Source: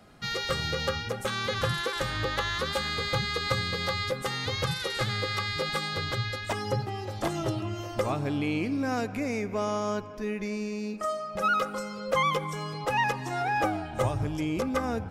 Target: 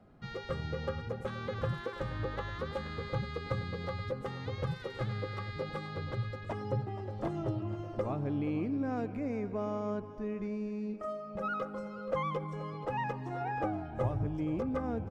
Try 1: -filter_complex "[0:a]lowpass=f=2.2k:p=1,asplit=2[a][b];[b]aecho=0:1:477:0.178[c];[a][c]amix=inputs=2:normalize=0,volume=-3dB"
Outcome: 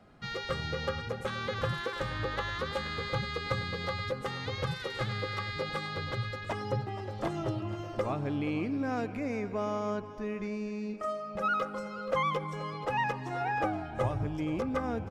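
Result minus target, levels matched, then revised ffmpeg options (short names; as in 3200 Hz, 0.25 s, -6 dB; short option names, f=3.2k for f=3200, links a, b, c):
2000 Hz band +5.0 dB
-filter_complex "[0:a]lowpass=f=590:p=1,asplit=2[a][b];[b]aecho=0:1:477:0.178[c];[a][c]amix=inputs=2:normalize=0,volume=-3dB"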